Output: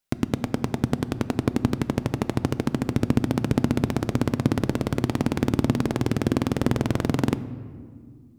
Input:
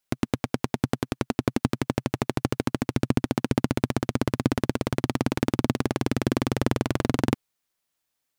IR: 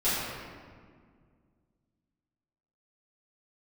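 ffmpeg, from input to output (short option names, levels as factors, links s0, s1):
-filter_complex "[0:a]lowshelf=f=330:g=4,asplit=2[s0][s1];[1:a]atrim=start_sample=2205,lowshelf=f=300:g=7[s2];[s1][s2]afir=irnorm=-1:irlink=0,volume=0.0501[s3];[s0][s3]amix=inputs=2:normalize=0,volume=0.841"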